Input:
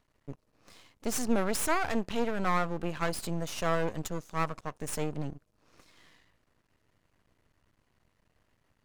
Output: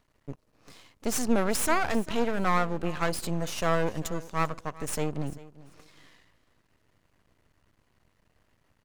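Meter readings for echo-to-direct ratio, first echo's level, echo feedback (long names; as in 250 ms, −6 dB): −19.0 dB, −19.0 dB, 20%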